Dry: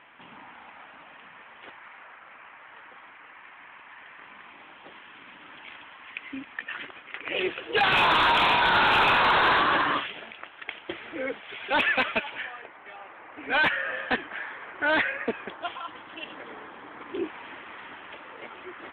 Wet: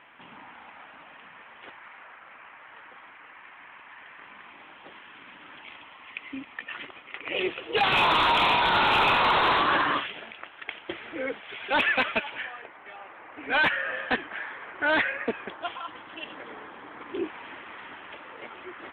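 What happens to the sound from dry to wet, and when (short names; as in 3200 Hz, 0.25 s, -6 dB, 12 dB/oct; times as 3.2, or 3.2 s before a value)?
5.61–9.68 bell 1600 Hz -7.5 dB 0.25 oct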